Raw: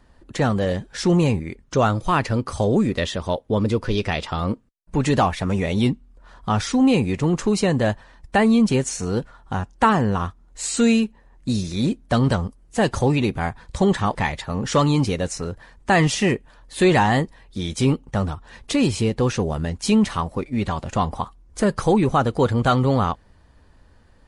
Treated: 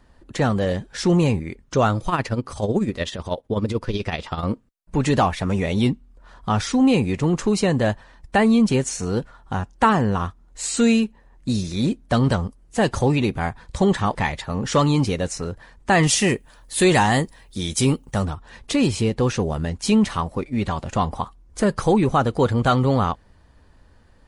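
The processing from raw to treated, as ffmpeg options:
-filter_complex "[0:a]asettb=1/sr,asplit=3[a][b][c];[a]atrim=end=2.084[d];[b]atrim=start=2.08:end=4.43,asetpts=PTS-STARTPTS,afade=t=in:d=0.004:c=qsin,afade=t=out:st=2.346:d=0.004:c=qsin,tremolo=f=16:d=0.65[e];[c]atrim=start=4.426[f];[d][e]acrossfade=d=0.004:c1=hsin:c2=qsin[g];[g][f]acrossfade=d=0.004:c1=qsin:c2=hsin,asettb=1/sr,asplit=3[h][i][j];[h]atrim=end=16.034[k];[i]atrim=start=16.03:end=18.25,asetpts=PTS-STARTPTS,afade=t=in:d=0.004:c=qsin,afade=t=out:st=2.216:d=0.004:c=qsin,aemphasis=mode=production:type=50fm[l];[j]atrim=start=18.246[m];[k][l]acrossfade=d=0.004:c1=hsin:c2=qsin[n];[n][m]acrossfade=d=0.004:c1=qsin:c2=hsin"

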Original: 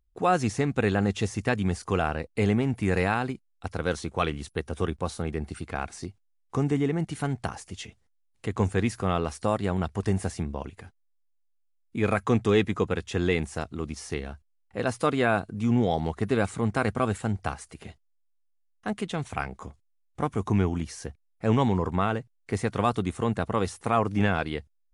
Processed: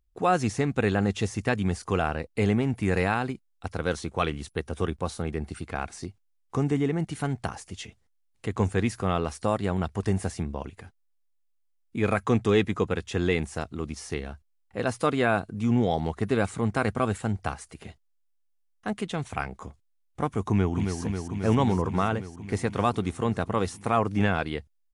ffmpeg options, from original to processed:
-filter_complex "[0:a]asplit=2[a][b];[b]afade=t=in:st=20.48:d=0.01,afade=t=out:st=21:d=0.01,aecho=0:1:270|540|810|1080|1350|1620|1890|2160|2430|2700|2970|3240:0.501187|0.40095|0.32076|0.256608|0.205286|0.164229|0.131383|0.105107|0.0840853|0.0672682|0.0538146|0.0430517[c];[a][c]amix=inputs=2:normalize=0"

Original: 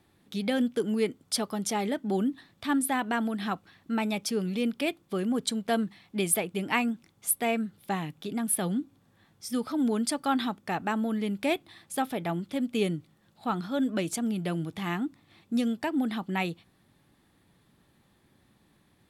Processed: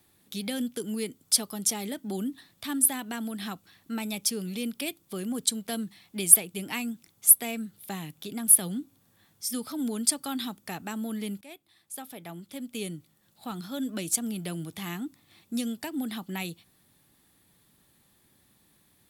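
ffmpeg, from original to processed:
-filter_complex "[0:a]asplit=2[a][b];[a]atrim=end=11.41,asetpts=PTS-STARTPTS,afade=t=out:st=11.406:d=0.004:c=hsin:silence=0.0944061[c];[b]atrim=start=11.41,asetpts=PTS-STARTPTS,afade=t=in:d=2.29:silence=0.0944061[d];[c][d]concat=n=2:v=0:a=1,aemphasis=mode=production:type=75kf,acrossover=split=340|3000[e][f][g];[f]acompressor=threshold=-38dB:ratio=2[h];[e][h][g]amix=inputs=3:normalize=0,volume=-3.5dB"

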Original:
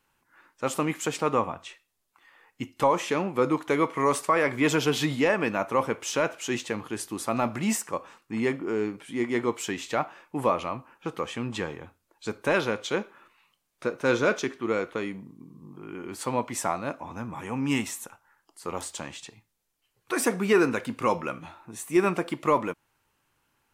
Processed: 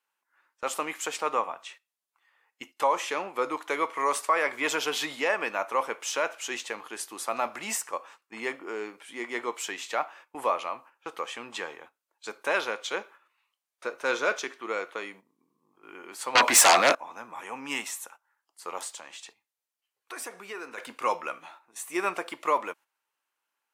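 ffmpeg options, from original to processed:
-filter_complex "[0:a]asettb=1/sr,asplit=3[a][b][c];[a]atrim=end=16.354[d];[b]atrim=start=16.35:end=16.95,asetpts=PTS-STARTPTS,afade=t=in:d=0.004:c=qsin,afade=t=out:st=0.596:d=0.004:c=qsin,aeval=exprs='0.266*sin(PI/2*6.31*val(0)/0.266)':c=same[e];[c]atrim=start=16.946[f];[d][e]acrossfade=d=0.004:c1=hsin:c2=qsin[g];[g][f]acrossfade=d=0.004:c1=qsin:c2=hsin,asettb=1/sr,asplit=3[h][i][j];[h]atrim=end=18.924[k];[i]atrim=start=18.92:end=20.78,asetpts=PTS-STARTPTS,afade=t=in:d=0.004:c=qsin,afade=t=out:st=1.856:d=0.004:c=qsin,acompressor=threshold=-40dB:ratio=2:attack=3.2:release=140:knee=1:detection=peak[l];[j]atrim=start=20.776[m];[k][l]acrossfade=d=0.004:c1=hsin:c2=qsin[n];[n][m]acrossfade=d=0.004:c1=qsin:c2=hsin,highpass=600,agate=range=-10dB:threshold=-49dB:ratio=16:detection=peak"

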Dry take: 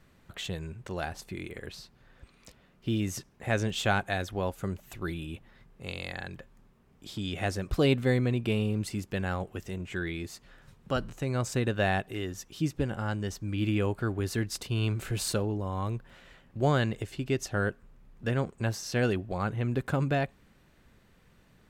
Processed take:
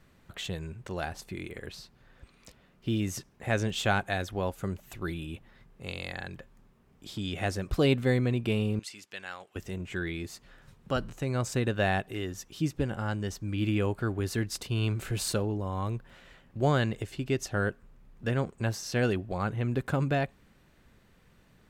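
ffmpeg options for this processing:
-filter_complex "[0:a]asettb=1/sr,asplit=3[a][b][c];[a]atrim=end=8.794[d];[b]atrim=start=8.79:end=9.56,asetpts=PTS-STARTPTS,afade=t=in:d=0.004:c=qsin,afade=t=out:st=0.766:d=0.004:c=qsin,bandpass=f=3.9k:t=q:w=0.57[e];[c]atrim=start=9.556[f];[d][e]acrossfade=d=0.004:c1=hsin:c2=qsin[g];[g][f]acrossfade=d=0.004:c1=qsin:c2=hsin"

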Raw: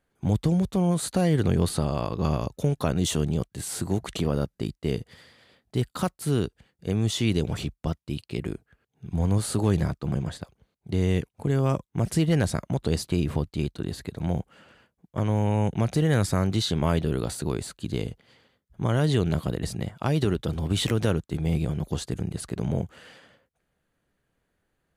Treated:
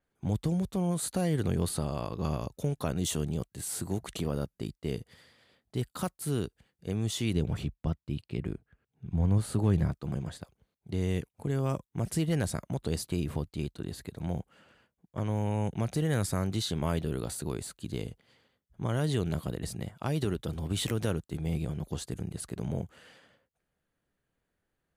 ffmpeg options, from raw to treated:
-filter_complex "[0:a]asettb=1/sr,asplit=3[a][b][c];[a]atrim=end=7.334[d];[b]atrim=start=7.33:end=9.92,asetpts=PTS-STARTPTS,afade=t=in:d=0.004:c=qsin,afade=t=out:st=2.586:d=0.004:c=qsin,bass=f=250:g=5,treble=f=4k:g=-8[e];[c]atrim=start=9.916[f];[d][e]acrossfade=d=0.004:c1=hsin:c2=qsin[g];[g][f]acrossfade=d=0.004:c1=qsin:c2=hsin,adynamicequalizer=threshold=0.00355:dfrequency=7600:dqfactor=0.7:tfrequency=7600:tqfactor=0.7:attack=5:release=100:ratio=0.375:range=3.5:mode=boostabove:tftype=highshelf,volume=-6.5dB"

